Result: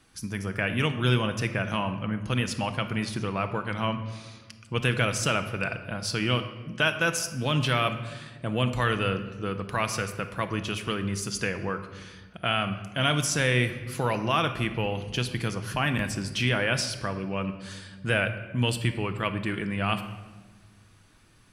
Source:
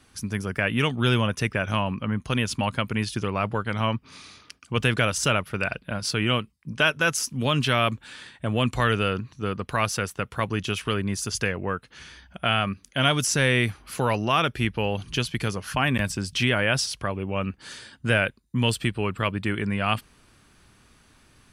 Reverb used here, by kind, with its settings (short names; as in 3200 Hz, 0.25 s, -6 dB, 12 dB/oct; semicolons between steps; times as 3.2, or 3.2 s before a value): shoebox room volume 1100 m³, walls mixed, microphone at 0.68 m; gain -3.5 dB